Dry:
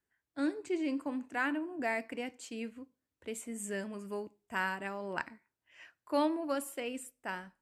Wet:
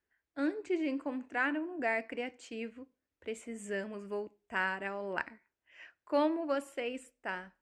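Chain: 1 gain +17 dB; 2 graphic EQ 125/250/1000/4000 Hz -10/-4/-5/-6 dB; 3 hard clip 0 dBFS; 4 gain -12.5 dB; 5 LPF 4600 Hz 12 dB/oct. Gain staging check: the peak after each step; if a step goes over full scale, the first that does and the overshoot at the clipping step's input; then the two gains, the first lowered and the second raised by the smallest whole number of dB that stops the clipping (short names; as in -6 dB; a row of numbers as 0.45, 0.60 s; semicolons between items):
-1.0, -4.0, -4.0, -16.5, -16.5 dBFS; no overload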